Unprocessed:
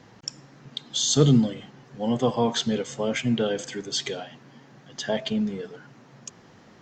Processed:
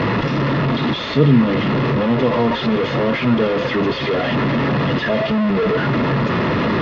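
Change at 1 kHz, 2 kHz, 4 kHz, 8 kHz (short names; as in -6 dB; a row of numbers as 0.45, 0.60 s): +14.0 dB, +16.0 dB, +3.0 dB, under -15 dB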